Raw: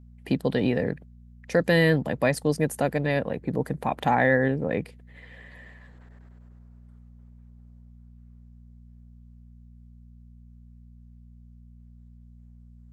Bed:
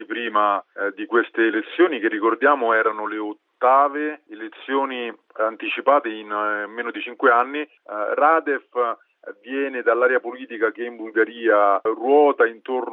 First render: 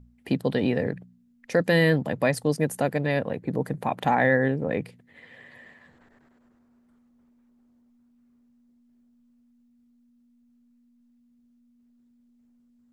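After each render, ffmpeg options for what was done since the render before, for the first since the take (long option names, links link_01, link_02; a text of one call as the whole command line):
ffmpeg -i in.wav -af "bandreject=frequency=60:width_type=h:width=4,bandreject=frequency=120:width_type=h:width=4,bandreject=frequency=180:width_type=h:width=4" out.wav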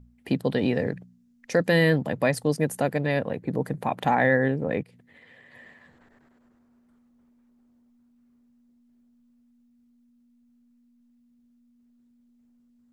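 ffmpeg -i in.wav -filter_complex "[0:a]asettb=1/sr,asplit=3[link_01][link_02][link_03];[link_01]atrim=end=0.624[link_04];[link_02]atrim=start=0.62:end=1.58,asetpts=PTS-STARTPTS,afade=type=in:duration=0.004:curve=qsin,afade=type=out:start_time=0.956:duration=0.004:curve=qsin,equalizer=frequency=6100:width=1.5:gain=5[link_05];[link_03]atrim=start=1.576[link_06];[link_04][link_05]acrossfade=duration=0.004:curve1=hsin:curve2=qsin[link_07];[link_07][link_06]acrossfade=duration=0.004:curve1=qsin:curve2=hsin,asplit=3[link_08][link_09][link_10];[link_08]afade=type=out:start_time=4.82:duration=0.02[link_11];[link_09]acompressor=threshold=-49dB:ratio=5:attack=3.2:release=140:knee=1:detection=peak,afade=type=in:start_time=4.82:duration=0.02,afade=type=out:start_time=5.53:duration=0.02[link_12];[link_10]afade=type=in:start_time=5.53:duration=0.02[link_13];[link_11][link_12][link_13]amix=inputs=3:normalize=0" out.wav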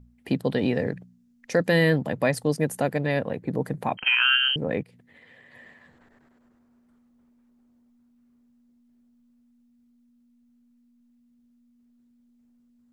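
ffmpeg -i in.wav -filter_complex "[0:a]asettb=1/sr,asplit=3[link_01][link_02][link_03];[link_01]atrim=end=3.974[link_04];[link_02]atrim=start=3.97:end=4.56,asetpts=PTS-STARTPTS,afade=type=in:duration=0.004:curve=qsin,afade=type=out:start_time=0.586:duration=0.004:curve=qsin,lowpass=frequency=2800:width_type=q:width=0.5098,lowpass=frequency=2800:width_type=q:width=0.6013,lowpass=frequency=2800:width_type=q:width=0.9,lowpass=frequency=2800:width_type=q:width=2.563,afreqshift=-3300[link_05];[link_03]atrim=start=4.556[link_06];[link_04][link_05]acrossfade=duration=0.004:curve1=hsin:curve2=qsin[link_07];[link_07][link_06]acrossfade=duration=0.004:curve1=qsin:curve2=hsin" out.wav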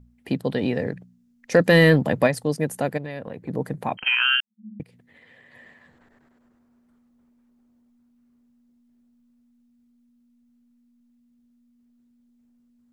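ffmpeg -i in.wav -filter_complex "[0:a]asplit=3[link_01][link_02][link_03];[link_01]afade=type=out:start_time=1.51:duration=0.02[link_04];[link_02]acontrast=53,afade=type=in:start_time=1.51:duration=0.02,afade=type=out:start_time=2.26:duration=0.02[link_05];[link_03]afade=type=in:start_time=2.26:duration=0.02[link_06];[link_04][link_05][link_06]amix=inputs=3:normalize=0,asplit=3[link_07][link_08][link_09];[link_07]afade=type=out:start_time=2.97:duration=0.02[link_10];[link_08]acompressor=threshold=-31dB:ratio=3:attack=3.2:release=140:knee=1:detection=peak,afade=type=in:start_time=2.97:duration=0.02,afade=type=out:start_time=3.48:duration=0.02[link_11];[link_09]afade=type=in:start_time=3.48:duration=0.02[link_12];[link_10][link_11][link_12]amix=inputs=3:normalize=0,asettb=1/sr,asplit=3[link_13][link_14][link_15];[link_13]atrim=end=4.404[link_16];[link_14]atrim=start=4.4:end=4.8,asetpts=PTS-STARTPTS,afade=type=in:duration=0.004:curve=qsin,afade=type=out:start_time=0.396:duration=0.004:curve=qsin,asuperpass=centerf=210:order=12:qfactor=7.3[link_17];[link_15]atrim=start=4.796[link_18];[link_16][link_17]acrossfade=duration=0.004:curve1=hsin:curve2=qsin[link_19];[link_19][link_18]acrossfade=duration=0.004:curve1=qsin:curve2=hsin" out.wav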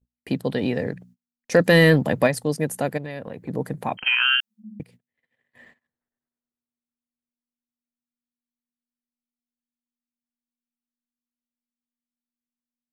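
ffmpeg -i in.wav -af "agate=range=-34dB:threshold=-49dB:ratio=16:detection=peak,highshelf=frequency=5900:gain=4.5" out.wav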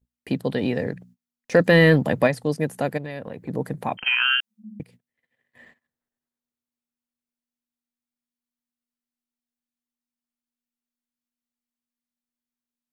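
ffmpeg -i in.wav -filter_complex "[0:a]acrossover=split=3900[link_01][link_02];[link_02]acompressor=threshold=-41dB:ratio=4:attack=1:release=60[link_03];[link_01][link_03]amix=inputs=2:normalize=0" out.wav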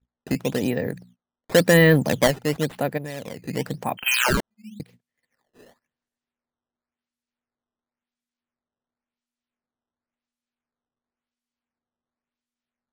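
ffmpeg -i in.wav -af "acrusher=samples=11:mix=1:aa=0.000001:lfo=1:lforange=17.6:lforate=0.94" out.wav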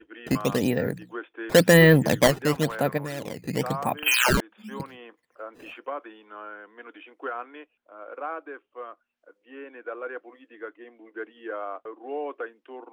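ffmpeg -i in.wav -i bed.wav -filter_complex "[1:a]volume=-17.5dB[link_01];[0:a][link_01]amix=inputs=2:normalize=0" out.wav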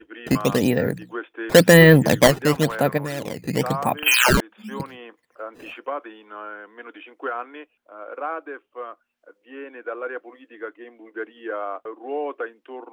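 ffmpeg -i in.wav -af "volume=4.5dB,alimiter=limit=-1dB:level=0:latency=1" out.wav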